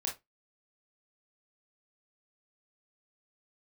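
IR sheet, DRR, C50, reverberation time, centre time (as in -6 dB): -1.0 dB, 9.5 dB, 0.20 s, 23 ms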